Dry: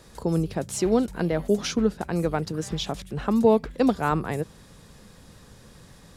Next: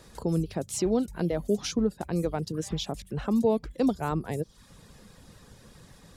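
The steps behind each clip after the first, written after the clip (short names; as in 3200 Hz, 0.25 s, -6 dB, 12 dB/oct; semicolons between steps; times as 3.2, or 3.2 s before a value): reverb removal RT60 0.52 s; dynamic EQ 1600 Hz, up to -7 dB, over -41 dBFS, Q 0.74; in parallel at +0.5 dB: limiter -17 dBFS, peak gain reduction 8.5 dB; on the sum: gain -7.5 dB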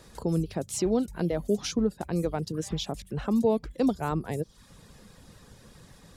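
nothing audible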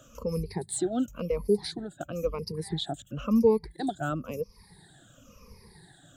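moving spectral ripple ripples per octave 0.86, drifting -0.97 Hz, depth 24 dB; gain -7 dB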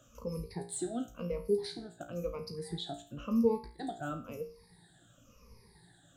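resonator 58 Hz, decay 0.42 s, harmonics all, mix 80%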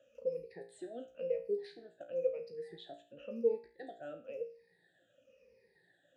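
vowel filter e; gain +6.5 dB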